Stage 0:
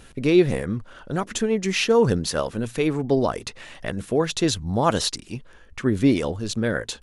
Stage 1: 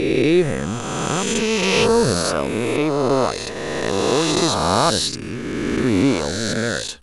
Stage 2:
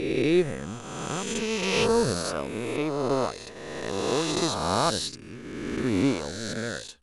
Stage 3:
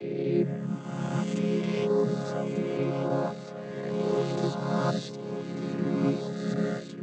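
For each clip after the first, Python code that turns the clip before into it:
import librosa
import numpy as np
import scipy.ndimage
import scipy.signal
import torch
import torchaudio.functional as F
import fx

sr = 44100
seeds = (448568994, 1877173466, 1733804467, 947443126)

y1 = fx.spec_swells(x, sr, rise_s=2.68)
y1 = F.gain(torch.from_numpy(y1), -1.0).numpy()
y2 = fx.upward_expand(y1, sr, threshold_db=-34.0, expansion=1.5)
y2 = F.gain(torch.from_numpy(y2), -5.5).numpy()
y3 = fx.chord_vocoder(y2, sr, chord='major triad', root=49)
y3 = fx.rider(y3, sr, range_db=4, speed_s=0.5)
y3 = y3 + 10.0 ** (-9.0 / 20.0) * np.pad(y3, (int(1193 * sr / 1000.0), 0))[:len(y3)]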